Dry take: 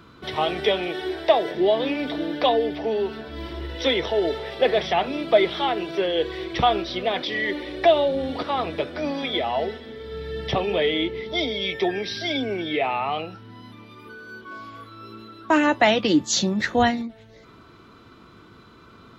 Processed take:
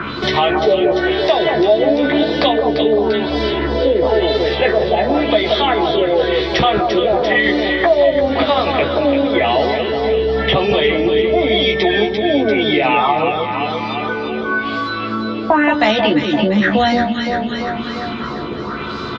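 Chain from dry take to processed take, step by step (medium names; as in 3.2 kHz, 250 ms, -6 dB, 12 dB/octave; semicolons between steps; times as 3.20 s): LFO low-pass sine 0.96 Hz 530–5300 Hz; in parallel at -1 dB: compressor with a negative ratio -24 dBFS; on the sum: doubling 14 ms -4 dB; on a send: echo whose repeats swap between lows and highs 172 ms, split 1.2 kHz, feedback 69%, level -5 dB; on the sum: three bands compressed up and down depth 70%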